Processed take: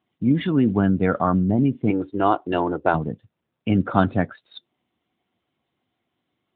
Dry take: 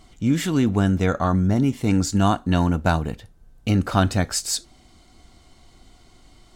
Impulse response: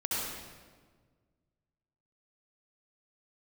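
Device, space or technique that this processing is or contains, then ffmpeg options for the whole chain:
mobile call with aggressive noise cancelling: -filter_complex "[0:a]asettb=1/sr,asplit=3[s0][s1][s2];[s0]atrim=end=1.904[s3];[s1]atrim=start=1.9:end=2.94,asetpts=PTS-STARTPTS,afade=t=in:d=0.004:c=qsin,afade=t=out:st=1.036:d=0.004:c=qsin,lowshelf=f=280:t=q:w=3:g=-8[s4];[s2]atrim=start=2.936[s5];[s3][s4]acrossfade=d=0.004:c1=hsin:c2=qsin[s6];[s6][s5]acrossfade=d=0.004:c1=qsin:c2=hsin,highpass=120,afftdn=nr=21:nf=-31,volume=1.26" -ar 8000 -c:a libopencore_amrnb -b:a 10200

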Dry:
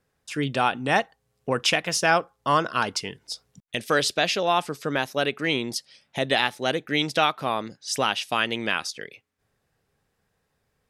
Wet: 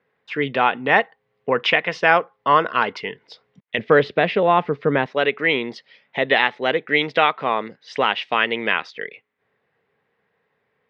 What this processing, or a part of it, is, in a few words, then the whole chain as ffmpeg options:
kitchen radio: -filter_complex "[0:a]asettb=1/sr,asplit=3[s0][s1][s2];[s0]atrim=end=3.784[s3];[s1]atrim=start=3.78:end=5.06,asetpts=PTS-STARTPTS,afade=t=in:d=0.004:c=qsin,afade=t=out:st=1.276:d=0.004:c=qsin,aemphasis=mode=reproduction:type=riaa[s4];[s2]atrim=start=5.056[s5];[s3][s4]acrossfade=d=0.004:c1=hsin:c2=qsin[s6];[s6][s5]acrossfade=d=0.004:c1=qsin:c2=hsin,highpass=180,equalizer=f=310:t=q:w=4:g=-3,equalizer=f=450:t=q:w=4:g=6,equalizer=f=1000:t=q:w=4:g=4,equalizer=f=2000:t=q:w=4:g=8,lowpass=f=3400:w=0.5412,lowpass=f=3400:w=1.3066,volume=1.41"

